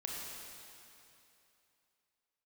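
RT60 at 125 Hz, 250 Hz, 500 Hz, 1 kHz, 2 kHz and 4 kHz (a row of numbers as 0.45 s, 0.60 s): 2.8 s, 2.7 s, 2.9 s, 2.9 s, 2.8 s, 2.7 s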